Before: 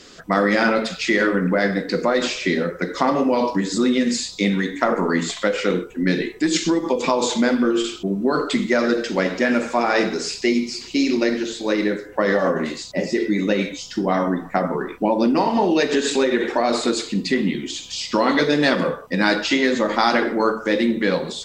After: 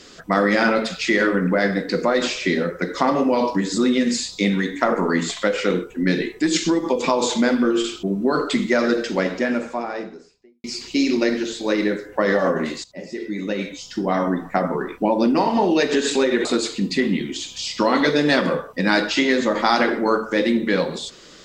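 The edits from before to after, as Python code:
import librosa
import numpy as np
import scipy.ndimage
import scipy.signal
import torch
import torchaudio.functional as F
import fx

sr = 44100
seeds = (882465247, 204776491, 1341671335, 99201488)

y = fx.studio_fade_out(x, sr, start_s=8.94, length_s=1.7)
y = fx.edit(y, sr, fx.fade_in_from(start_s=12.84, length_s=1.48, floor_db=-15.5),
    fx.cut(start_s=16.45, length_s=0.34), tone=tone)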